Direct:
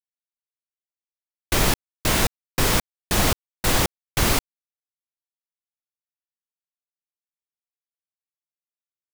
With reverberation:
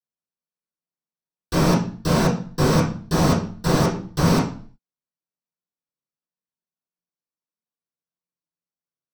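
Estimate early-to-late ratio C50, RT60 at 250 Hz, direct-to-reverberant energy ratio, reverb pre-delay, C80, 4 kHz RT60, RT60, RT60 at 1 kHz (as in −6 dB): 7.0 dB, 0.70 s, −11.0 dB, 3 ms, 11.5 dB, 0.40 s, 0.45 s, 0.45 s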